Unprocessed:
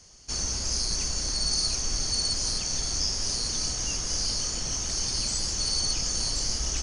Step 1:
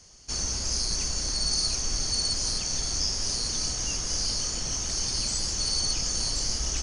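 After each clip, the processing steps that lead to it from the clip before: no audible change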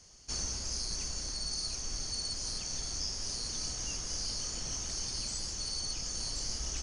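gain riding within 5 dB 0.5 s; trim -8.5 dB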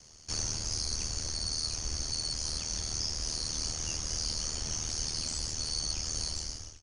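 fade out at the end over 0.60 s; ring modulator 39 Hz; trim +5.5 dB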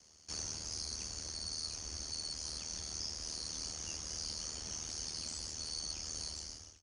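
high-pass 62 Hz; peaking EQ 120 Hz -13.5 dB 0.33 oct; trim -7 dB

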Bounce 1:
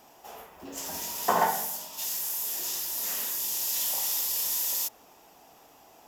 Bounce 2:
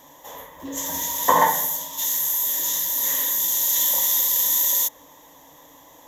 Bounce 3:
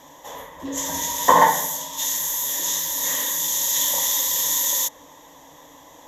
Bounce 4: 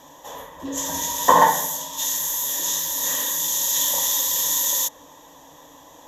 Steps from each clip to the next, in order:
rippled EQ curve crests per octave 1.1, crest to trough 14 dB; trim +4.5 dB
low-pass 10 kHz 12 dB/octave; trim +3 dB
band-stop 2.1 kHz, Q 7

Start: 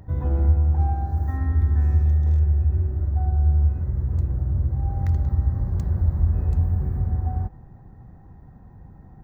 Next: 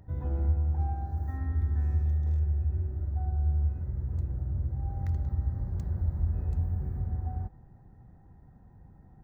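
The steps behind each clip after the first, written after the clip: band-stop 1.1 kHz, Q 12; trim -8.5 dB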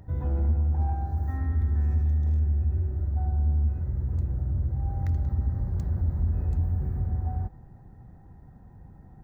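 saturation -22.5 dBFS, distortion -19 dB; trim +5 dB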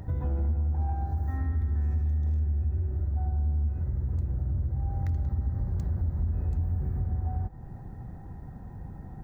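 compression 2.5:1, threshold -38 dBFS, peak gain reduction 11.5 dB; trim +7.5 dB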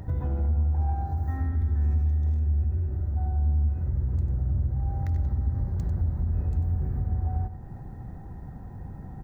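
delay 95 ms -11 dB; trim +1.5 dB

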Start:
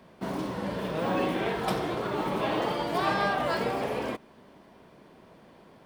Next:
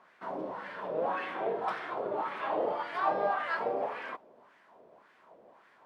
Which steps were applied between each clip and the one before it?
added noise pink -61 dBFS; wah-wah 1.8 Hz 520–1800 Hz, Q 2.3; trim +2.5 dB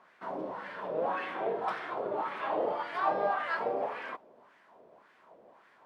no audible change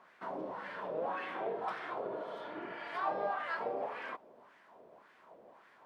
in parallel at +3 dB: compression, threshold -40 dBFS, peak gain reduction 15.5 dB; on the sum: spectral replace 2.12–2.86 s, 430–3000 Hz both; trim -8 dB

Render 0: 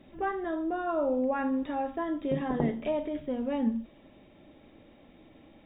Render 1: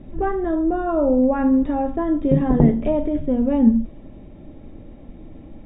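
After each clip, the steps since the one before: tilt EQ -4 dB/octave; trim +5.5 dB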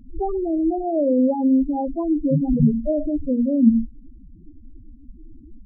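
loudest bins only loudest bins 4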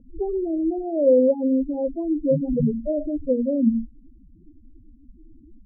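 four-pole ladder low-pass 550 Hz, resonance 70%; trim +5 dB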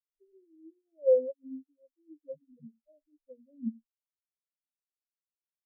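spectral contrast expander 4:1; trim -6.5 dB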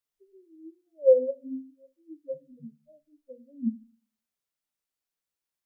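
simulated room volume 160 m³, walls furnished, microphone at 0.31 m; trim +6 dB

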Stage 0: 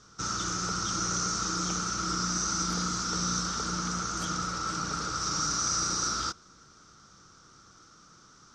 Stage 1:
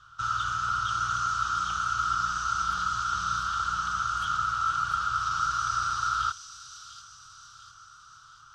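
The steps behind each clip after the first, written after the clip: FFT filter 120 Hz 0 dB, 200 Hz -21 dB, 430 Hz -21 dB, 1.4 kHz +9 dB, 2.1 kHz -10 dB, 3 kHz +7 dB, 5.6 kHz -14 dB, 10 kHz -5 dB; feedback echo behind a high-pass 697 ms, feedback 49%, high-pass 4.7 kHz, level -3.5 dB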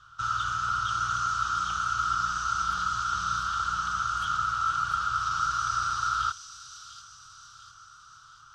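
no audible change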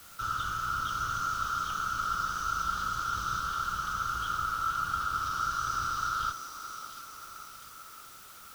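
octave divider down 1 oct, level +1 dB; feedback echo behind a band-pass 577 ms, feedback 58%, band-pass 540 Hz, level -6.5 dB; word length cut 8-bit, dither triangular; trim -4 dB

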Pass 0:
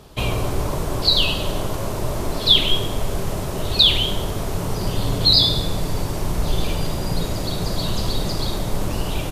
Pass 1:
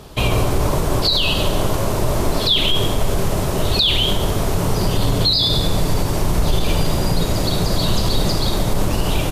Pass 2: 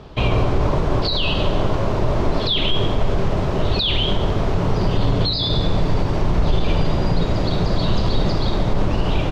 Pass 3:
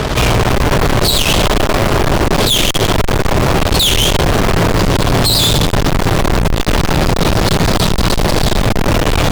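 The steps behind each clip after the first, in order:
peak limiter -13.5 dBFS, peak gain reduction 11 dB; trim +6 dB
distance through air 200 m
fuzz box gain 46 dB, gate -41 dBFS; trim +3 dB

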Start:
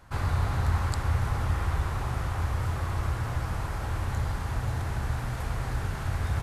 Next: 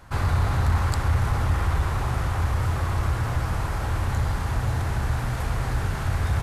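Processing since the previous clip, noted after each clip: saturation -17 dBFS, distortion -24 dB; trim +5.5 dB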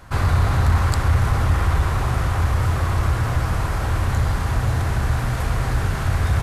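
band-stop 860 Hz, Q 19; trim +4.5 dB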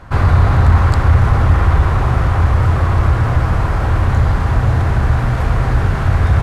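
low-pass 1.9 kHz 6 dB/octave; trim +7 dB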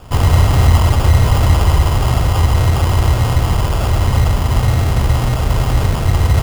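sample-and-hold 22×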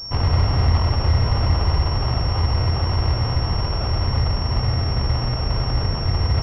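class-D stage that switches slowly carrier 5.5 kHz; trim -7 dB

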